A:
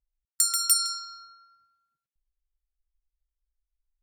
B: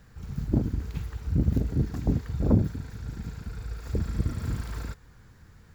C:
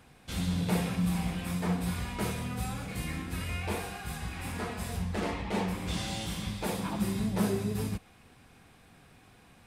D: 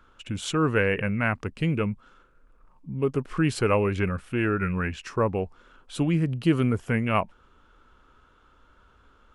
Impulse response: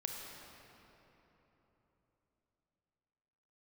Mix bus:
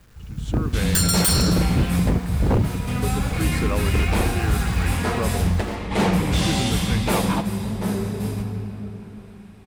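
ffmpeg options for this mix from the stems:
-filter_complex "[0:a]adelay=550,volume=-1dB[link_01];[1:a]acrusher=bits=8:mix=0:aa=0.000001,volume=-2dB[link_02];[2:a]adelay=450,volume=0.5dB,asplit=2[link_03][link_04];[link_04]volume=-7.5dB[link_05];[3:a]volume=-13.5dB,asplit=2[link_06][link_07];[link_07]apad=whole_len=445983[link_08];[link_03][link_08]sidechaingate=range=-19dB:threshold=-59dB:ratio=16:detection=peak[link_09];[4:a]atrim=start_sample=2205[link_10];[link_05][link_10]afir=irnorm=-1:irlink=0[link_11];[link_01][link_02][link_09][link_06][link_11]amix=inputs=5:normalize=0,lowshelf=frequency=90:gain=5,dynaudnorm=framelen=170:gausssize=7:maxgain=9dB,aeval=exprs='0.237*(abs(mod(val(0)/0.237+3,4)-2)-1)':channel_layout=same"

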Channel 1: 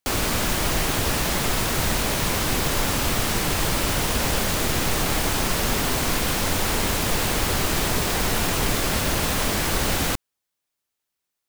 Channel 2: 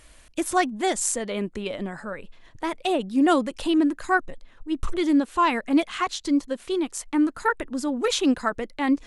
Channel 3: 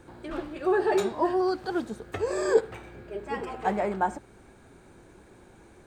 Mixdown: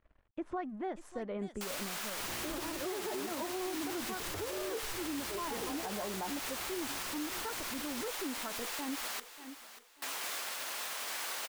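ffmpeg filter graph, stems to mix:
ffmpeg -i stem1.wav -i stem2.wav -i stem3.wav -filter_complex "[0:a]highpass=820,adelay=1550,volume=-11.5dB,asplit=3[link_01][link_02][link_03];[link_01]atrim=end=9.2,asetpts=PTS-STARTPTS,afade=type=out:start_time=9.196:duration=0.004:curve=hsin[link_04];[link_02]atrim=start=9.2:end=10.02,asetpts=PTS-STARTPTS,volume=0[link_05];[link_03]atrim=start=10.02,asetpts=PTS-STARTPTS,afade=type=in:duration=0.004:curve=hsin[link_06];[link_04][link_05][link_06]concat=n=3:v=0:a=1,asplit=2[link_07][link_08];[link_08]volume=-15.5dB[link_09];[1:a]aeval=exprs='sgn(val(0))*max(abs(val(0))-0.00282,0)':channel_layout=same,volume=-8dB,asplit=2[link_10][link_11];[link_11]volume=-21dB[link_12];[2:a]adelay=2200,volume=2.5dB[link_13];[link_10][link_13]amix=inputs=2:normalize=0,lowpass=1400,acompressor=threshold=-30dB:ratio=6,volume=0dB[link_14];[link_09][link_12]amix=inputs=2:normalize=0,aecho=0:1:589|1178|1767|2356:1|0.29|0.0841|0.0244[link_15];[link_07][link_14][link_15]amix=inputs=3:normalize=0,alimiter=level_in=5dB:limit=-24dB:level=0:latency=1:release=82,volume=-5dB" out.wav

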